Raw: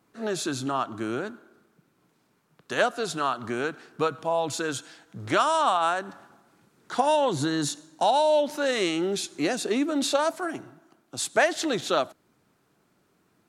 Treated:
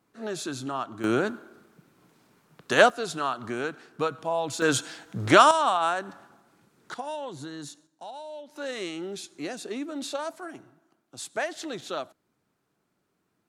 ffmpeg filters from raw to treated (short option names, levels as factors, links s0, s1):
-af "asetnsamples=n=441:p=0,asendcmd='1.04 volume volume 6dB;2.9 volume volume -2dB;4.62 volume volume 7dB;5.51 volume volume -1dB;6.94 volume volume -12.5dB;7.87 volume volume -19dB;8.56 volume volume -8.5dB',volume=0.631"